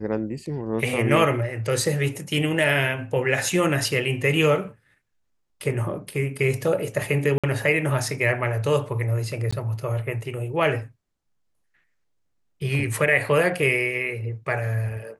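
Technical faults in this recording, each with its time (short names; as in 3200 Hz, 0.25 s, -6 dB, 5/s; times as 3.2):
7.38–7.44 gap 56 ms
9.51–9.53 gap 15 ms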